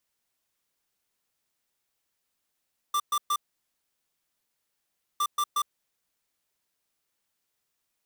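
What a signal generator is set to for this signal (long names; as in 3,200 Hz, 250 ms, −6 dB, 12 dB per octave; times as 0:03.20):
beeps in groups square 1,180 Hz, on 0.06 s, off 0.12 s, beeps 3, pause 1.84 s, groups 2, −25.5 dBFS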